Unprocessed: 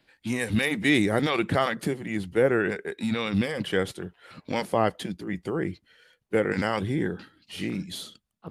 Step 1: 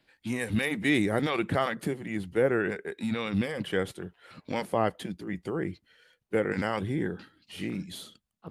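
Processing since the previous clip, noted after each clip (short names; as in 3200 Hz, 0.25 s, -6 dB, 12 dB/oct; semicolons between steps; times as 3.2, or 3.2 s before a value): dynamic EQ 5100 Hz, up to -4 dB, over -48 dBFS, Q 1; gain -3 dB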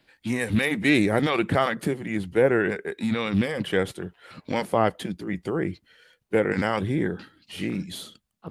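Doppler distortion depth 0.1 ms; gain +5 dB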